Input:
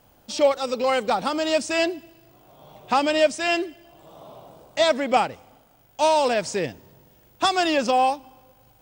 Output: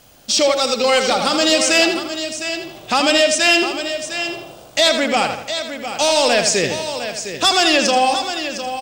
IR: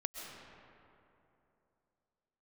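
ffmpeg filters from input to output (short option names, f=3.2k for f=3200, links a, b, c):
-filter_complex "[0:a]alimiter=limit=-13.5dB:level=0:latency=1:release=97,equalizer=f=6.1k:t=o:w=2.8:g=11,asplit=2[a][b];[b]aecho=0:1:707:0.299[c];[a][c]amix=inputs=2:normalize=0,acontrast=79,equalizer=f=930:t=o:w=0.23:g=-7,asplit=2[d][e];[e]adelay=82,lowpass=f=4.8k:p=1,volume=-6.5dB,asplit=2[f][g];[g]adelay=82,lowpass=f=4.8k:p=1,volume=0.44,asplit=2[h][i];[i]adelay=82,lowpass=f=4.8k:p=1,volume=0.44,asplit=2[j][k];[k]adelay=82,lowpass=f=4.8k:p=1,volume=0.44,asplit=2[l][m];[m]adelay=82,lowpass=f=4.8k:p=1,volume=0.44[n];[f][h][j][l][n]amix=inputs=5:normalize=0[o];[d][o]amix=inputs=2:normalize=0,volume=-1.5dB"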